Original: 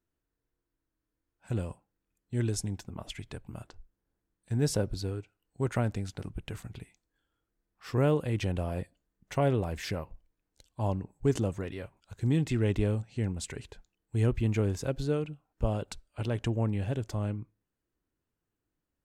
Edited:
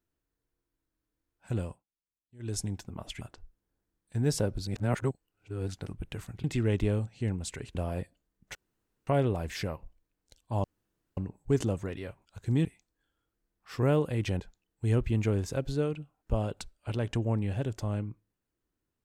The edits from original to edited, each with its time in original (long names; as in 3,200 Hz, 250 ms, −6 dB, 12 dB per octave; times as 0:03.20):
0:01.66–0:02.57: duck −22.5 dB, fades 0.18 s
0:03.21–0:03.57: remove
0:05.03–0:06.04: reverse
0:06.80–0:08.55: swap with 0:12.40–0:13.71
0:09.35: splice in room tone 0.52 s
0:10.92: splice in room tone 0.53 s